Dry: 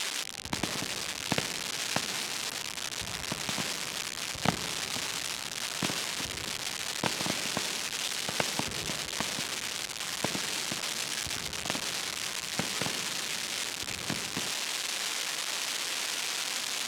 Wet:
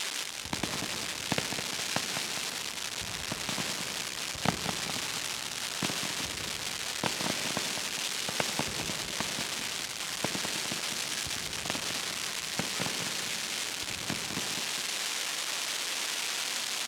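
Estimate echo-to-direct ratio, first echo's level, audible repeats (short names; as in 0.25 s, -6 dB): -6.5 dB, -7.5 dB, 2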